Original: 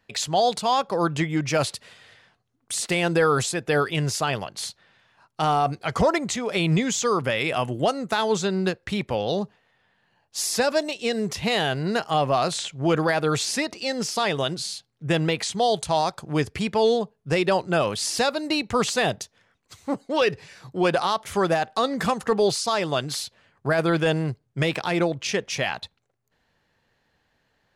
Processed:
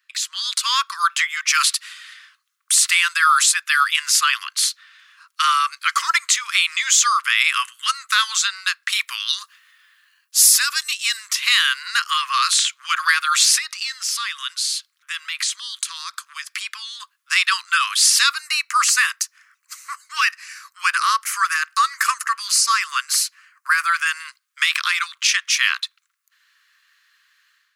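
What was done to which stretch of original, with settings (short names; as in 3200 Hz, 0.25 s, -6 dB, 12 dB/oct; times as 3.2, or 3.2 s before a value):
8.92–11.17 high shelf 8400 Hz +11 dB
13.58–17 compressor 2.5:1, threshold -34 dBFS
18.34–24.2 bell 3500 Hz -14 dB 0.44 oct
whole clip: steep high-pass 1100 Hz 96 dB/oct; high shelf 7200 Hz +6.5 dB; AGC gain up to 11.5 dB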